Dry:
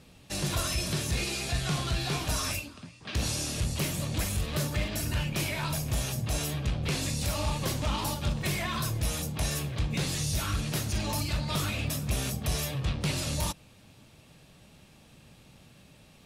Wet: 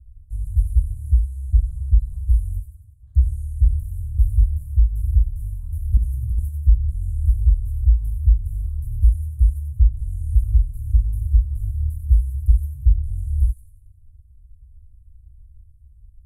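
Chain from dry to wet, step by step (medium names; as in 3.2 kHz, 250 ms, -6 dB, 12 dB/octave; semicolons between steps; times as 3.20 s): inverse Chebyshev band-stop 160–5600 Hz, stop band 40 dB; tilt EQ -4.5 dB/octave; 5.97–6.49 s: compressor with a negative ratio -18 dBFS, ratio -1; feedback echo behind a high-pass 92 ms, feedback 50%, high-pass 3.8 kHz, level -5 dB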